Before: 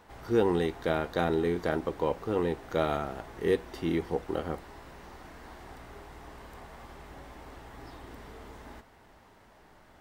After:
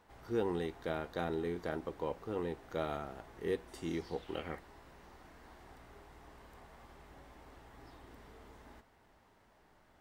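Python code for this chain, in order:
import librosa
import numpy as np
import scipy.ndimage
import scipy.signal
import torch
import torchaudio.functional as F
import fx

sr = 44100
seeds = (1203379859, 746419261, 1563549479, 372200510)

y = fx.peak_eq(x, sr, hz=fx.line((3.67, 10000.0), (4.58, 1800.0)), db=14.5, octaves=0.67, at=(3.67, 4.58), fade=0.02)
y = F.gain(torch.from_numpy(y), -9.0).numpy()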